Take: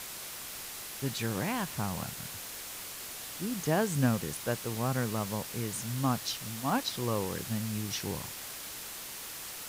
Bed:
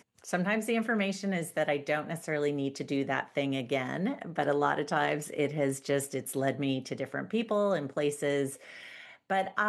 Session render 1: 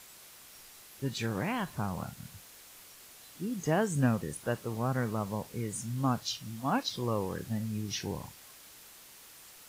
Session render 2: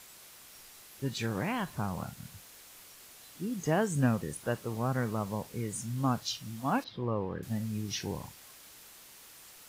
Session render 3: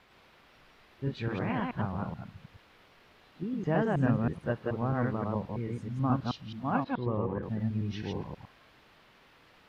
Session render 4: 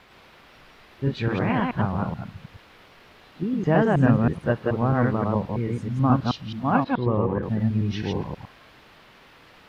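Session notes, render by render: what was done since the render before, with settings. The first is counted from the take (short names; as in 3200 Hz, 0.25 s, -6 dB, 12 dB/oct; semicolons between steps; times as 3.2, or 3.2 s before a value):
noise print and reduce 11 dB
6.84–7.43 air absorption 390 m
reverse delay 0.107 s, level -1 dB; air absorption 360 m
gain +8.5 dB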